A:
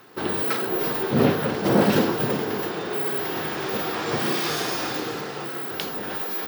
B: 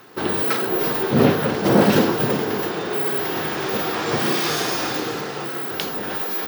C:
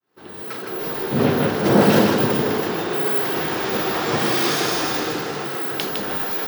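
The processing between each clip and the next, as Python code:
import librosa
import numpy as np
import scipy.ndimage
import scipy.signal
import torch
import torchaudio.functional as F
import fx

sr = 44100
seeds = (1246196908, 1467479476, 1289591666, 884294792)

y1 = fx.peak_eq(x, sr, hz=6300.0, db=2.0, octaves=0.23)
y1 = y1 * librosa.db_to_amplitude(3.5)
y2 = fx.fade_in_head(y1, sr, length_s=1.74)
y2 = y2 + 10.0 ** (-4.5 / 20.0) * np.pad(y2, (int(158 * sr / 1000.0), 0))[:len(y2)]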